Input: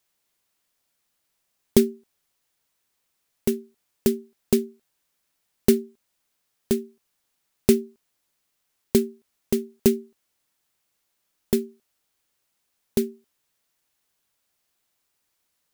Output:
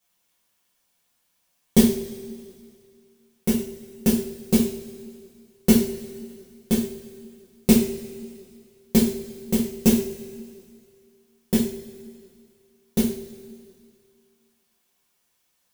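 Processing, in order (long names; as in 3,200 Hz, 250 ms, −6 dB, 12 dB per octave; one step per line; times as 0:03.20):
coupled-rooms reverb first 0.45 s, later 2.2 s, from −18 dB, DRR −9 dB
level −5 dB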